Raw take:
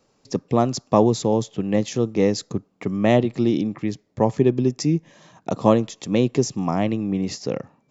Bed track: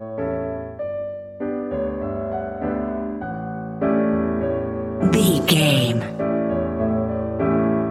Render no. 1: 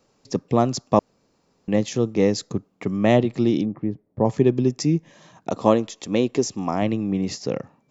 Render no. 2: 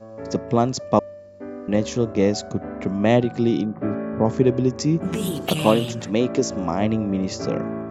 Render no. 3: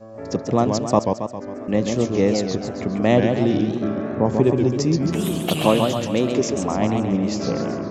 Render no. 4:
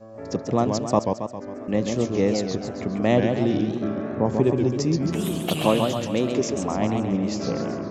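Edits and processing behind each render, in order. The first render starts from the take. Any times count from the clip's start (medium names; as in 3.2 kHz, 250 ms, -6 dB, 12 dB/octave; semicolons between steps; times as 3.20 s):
0.99–1.68 s: room tone; 3.65–4.25 s: Bessel low-pass 750 Hz; 5.51–6.82 s: peaking EQ 140 Hz -9.5 dB
add bed track -9 dB
modulated delay 135 ms, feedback 53%, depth 189 cents, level -5 dB
trim -3 dB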